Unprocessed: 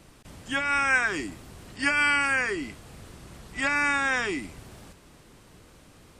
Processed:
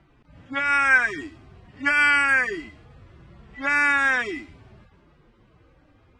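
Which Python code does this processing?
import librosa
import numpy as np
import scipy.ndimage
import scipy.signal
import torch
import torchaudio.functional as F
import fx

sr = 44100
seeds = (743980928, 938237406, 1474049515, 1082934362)

y = fx.hpss_only(x, sr, part='harmonic')
y = fx.env_lowpass(y, sr, base_hz=2200.0, full_db=-21.0)
y = fx.dynamic_eq(y, sr, hz=1700.0, q=1.6, threshold_db=-38.0, ratio=4.0, max_db=7)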